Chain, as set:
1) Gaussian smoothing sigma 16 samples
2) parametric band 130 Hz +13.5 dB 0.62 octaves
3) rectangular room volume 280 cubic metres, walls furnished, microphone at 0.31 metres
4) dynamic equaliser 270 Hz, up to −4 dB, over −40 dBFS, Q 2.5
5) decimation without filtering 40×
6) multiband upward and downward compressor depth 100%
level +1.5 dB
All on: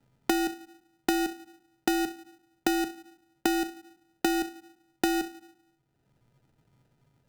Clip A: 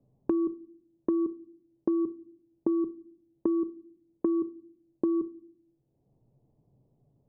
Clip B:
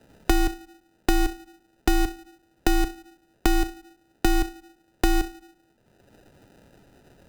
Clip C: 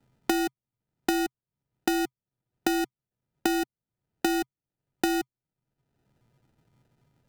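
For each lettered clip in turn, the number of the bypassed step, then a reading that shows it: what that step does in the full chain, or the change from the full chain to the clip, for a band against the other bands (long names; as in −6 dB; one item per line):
5, change in crest factor −6.5 dB
1, change in crest factor −3.0 dB
3, change in momentary loudness spread −4 LU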